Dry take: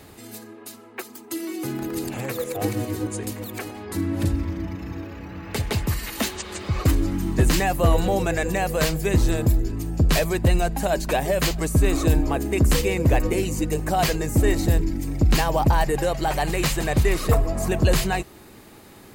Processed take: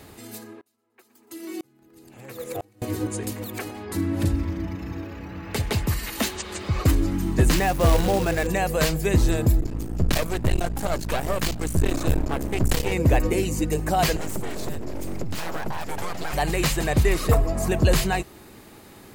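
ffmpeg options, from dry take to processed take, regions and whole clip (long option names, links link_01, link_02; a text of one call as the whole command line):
ffmpeg -i in.wav -filter_complex "[0:a]asettb=1/sr,asplit=3[link_01][link_02][link_03];[link_01]atrim=end=0.614[link_04];[link_02]atrim=start=0.61:end=2.82,asetpts=PTS-STARTPTS,afade=type=in:duration=0.004:curve=qsin,afade=type=out:start_time=2.206:duration=0.004:curve=qsin,asplit=5[link_05][link_06][link_07][link_08][link_09];[link_06]adelay=119,afreqshift=36,volume=-19dB[link_10];[link_07]adelay=238,afreqshift=72,volume=-25.2dB[link_11];[link_08]adelay=357,afreqshift=108,volume=-31.4dB[link_12];[link_09]adelay=476,afreqshift=144,volume=-37.6dB[link_13];[link_05][link_10][link_11][link_12][link_13]amix=inputs=5:normalize=0,atrim=end_sample=97461,aeval=exprs='val(0)*pow(10,-36*if(lt(mod(-1*n/s,1),2*abs(-1)/1000),1-mod(-1*n/s,1)/(2*abs(-1)/1000),(mod(-1*n/s,1)-2*abs(-1)/1000)/(1-2*abs(-1)/1000))/20)':channel_layout=same[link_14];[link_03]atrim=start=2.816[link_15];[link_04][link_14]acrossfade=duration=0.004:curve1=hsin:curve2=qsin[link_16];[link_16][link_15]acrossfade=duration=0.004:curve1=qsin:curve2=hsin,asettb=1/sr,asplit=3[link_17][link_18][link_19];[link_17]atrim=end=7.544[link_20];[link_18]atrim=start=7.54:end=8.47,asetpts=PTS-STARTPTS,afade=type=in:duration=0.004:curve=qsin,afade=type=out:start_time=0.926:duration=0.004:curve=qsin,highshelf=frequency=5400:gain=-9.5,acrusher=bits=3:mode=log:mix=0:aa=0.000001[link_21];[link_19]atrim=start=8.466[link_22];[link_20][link_21]acrossfade=duration=0.004:curve1=hsin:curve2=qsin[link_23];[link_23][link_22]acrossfade=duration=0.004:curve1=qsin:curve2=hsin,asettb=1/sr,asplit=3[link_24][link_25][link_26];[link_24]atrim=end=9.604[link_27];[link_25]atrim=start=9.6:end=12.92,asetpts=PTS-STARTPTS,afade=type=in:duration=0.004:curve=qsin,afade=type=out:start_time=3.316:duration=0.004:curve=qsin,aeval=exprs='max(val(0),0)':channel_layout=same,aeval=exprs='val(0)+0.0251*(sin(2*PI*60*n/s)+sin(2*PI*2*60*n/s)/2+sin(2*PI*3*60*n/s)/3+sin(2*PI*4*60*n/s)/4+sin(2*PI*5*60*n/s)/5)':channel_layout=same[link_28];[link_26]atrim=start=12.916[link_29];[link_27][link_28]acrossfade=duration=0.004:curve1=hsin:curve2=qsin[link_30];[link_30][link_29]acrossfade=duration=0.004:curve1=qsin:curve2=hsin,asettb=1/sr,asplit=3[link_31][link_32][link_33];[link_31]atrim=end=14.164[link_34];[link_32]atrim=start=14.16:end=16.33,asetpts=PTS-STARTPTS,afade=type=in:duration=0.004:curve=qsin,afade=type=out:start_time=2.166:duration=0.004:curve=qsin,acompressor=threshold=-22dB:ratio=12:attack=3.2:release=140:knee=1:detection=peak,highpass=frequency=40:width=0.5412,highpass=frequency=40:width=1.3066,aeval=exprs='abs(val(0))':channel_layout=same[link_35];[link_33]atrim=start=16.326[link_36];[link_34][link_35]acrossfade=duration=0.004:curve1=hsin:curve2=qsin[link_37];[link_37][link_36]acrossfade=duration=0.004:curve1=qsin:curve2=hsin" out.wav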